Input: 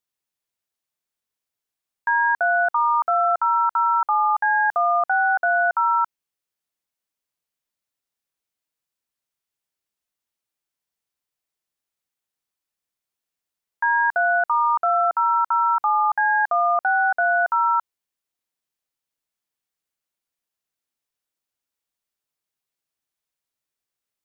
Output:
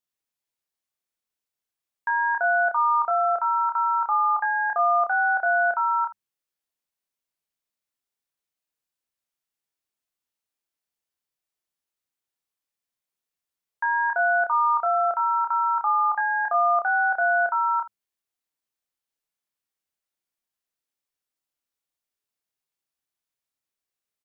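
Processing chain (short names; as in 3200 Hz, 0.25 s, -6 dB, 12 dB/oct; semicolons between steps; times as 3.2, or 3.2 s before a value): notches 50/100/150/200 Hz; early reflections 29 ms -4.5 dB, 78 ms -16.5 dB; gain -4 dB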